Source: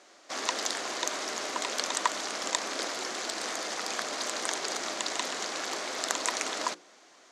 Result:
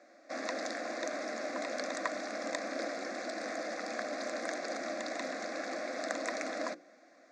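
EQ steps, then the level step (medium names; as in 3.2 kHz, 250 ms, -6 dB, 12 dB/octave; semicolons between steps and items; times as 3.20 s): band-pass 190–2700 Hz; peaking EQ 1.3 kHz -11 dB 0.94 oct; static phaser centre 610 Hz, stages 8; +5.0 dB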